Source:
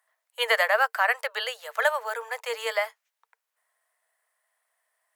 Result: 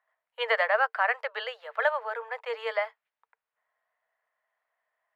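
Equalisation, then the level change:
dynamic equaliser 5,900 Hz, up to +7 dB, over −47 dBFS, Q 1.4
high-frequency loss of the air 420 metres
0.0 dB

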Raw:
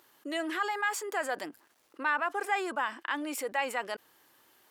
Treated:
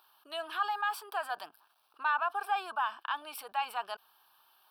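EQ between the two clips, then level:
low shelf with overshoot 410 Hz −11.5 dB, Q 3
phaser with its sweep stopped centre 2,000 Hz, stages 6
0.0 dB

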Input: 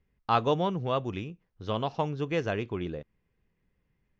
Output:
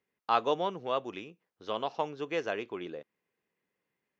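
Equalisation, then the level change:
high-pass filter 350 Hz 12 dB per octave
−1.5 dB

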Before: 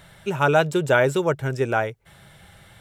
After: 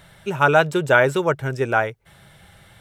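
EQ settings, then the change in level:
notch filter 7,200 Hz, Q 21
dynamic equaliser 1,400 Hz, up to +5 dB, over −30 dBFS, Q 0.71
0.0 dB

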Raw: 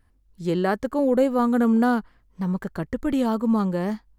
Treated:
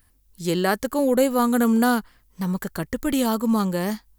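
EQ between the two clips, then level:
high-shelf EQ 2,300 Hz +11 dB
high-shelf EQ 9,500 Hz +12 dB
0.0 dB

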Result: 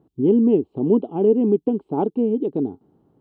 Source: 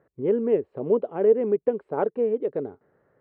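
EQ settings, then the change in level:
drawn EQ curve 130 Hz 0 dB, 300 Hz +6 dB, 560 Hz −16 dB, 800 Hz −3 dB, 1,200 Hz −13 dB, 1,800 Hz −28 dB, 3,100 Hz 0 dB, 5,300 Hz −7 dB
+8.5 dB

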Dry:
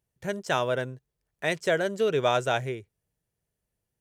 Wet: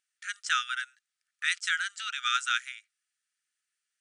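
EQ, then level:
dynamic equaliser 2,000 Hz, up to −4 dB, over −43 dBFS, Q 1.4
linear-phase brick-wall band-pass 1,200–10,000 Hz
+5.5 dB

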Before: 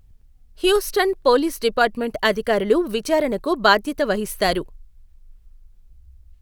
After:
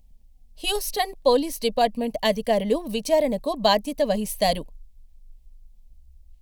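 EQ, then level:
phaser with its sweep stopped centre 370 Hz, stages 6
0.0 dB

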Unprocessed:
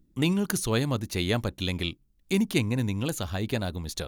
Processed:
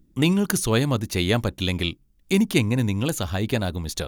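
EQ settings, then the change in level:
notch filter 4,100 Hz, Q 24
+5.0 dB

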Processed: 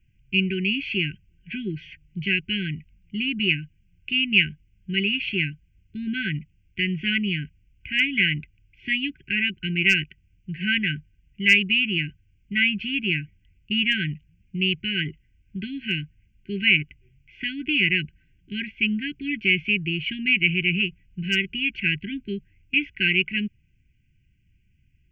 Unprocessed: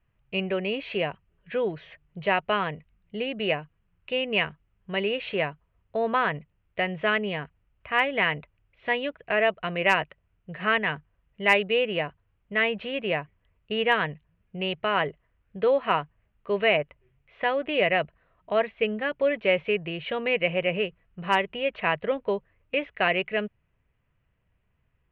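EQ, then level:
linear-phase brick-wall band-stop 400–1,500 Hz
phaser with its sweep stopped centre 2,600 Hz, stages 8
+9.0 dB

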